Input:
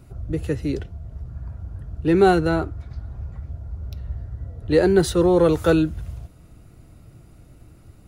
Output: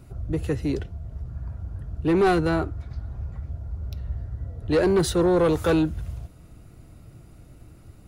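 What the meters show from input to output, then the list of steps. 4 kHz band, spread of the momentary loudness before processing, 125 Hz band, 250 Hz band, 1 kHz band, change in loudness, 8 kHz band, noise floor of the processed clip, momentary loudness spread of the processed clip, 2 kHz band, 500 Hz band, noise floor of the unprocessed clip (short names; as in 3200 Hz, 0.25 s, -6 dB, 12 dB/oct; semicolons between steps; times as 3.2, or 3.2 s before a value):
-1.5 dB, 19 LU, -2.0 dB, -3.0 dB, -3.0 dB, -5.0 dB, -0.5 dB, -49 dBFS, 16 LU, -2.5 dB, -3.5 dB, -49 dBFS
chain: soft clip -14.5 dBFS, distortion -12 dB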